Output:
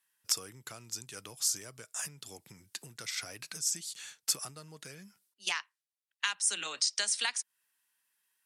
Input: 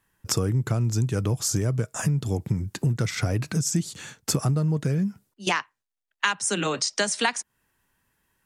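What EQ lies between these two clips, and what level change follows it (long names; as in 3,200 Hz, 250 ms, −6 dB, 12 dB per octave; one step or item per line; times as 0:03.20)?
resonant band-pass 7,900 Hz, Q 0.67
parametric band 6,900 Hz −6 dB 0.61 octaves
+1.5 dB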